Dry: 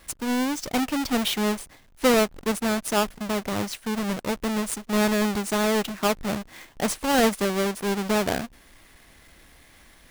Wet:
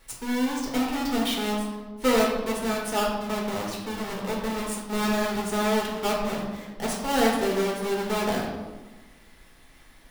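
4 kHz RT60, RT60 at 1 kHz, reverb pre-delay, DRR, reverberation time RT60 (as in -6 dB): 0.80 s, 1.3 s, 5 ms, -3.5 dB, 1.3 s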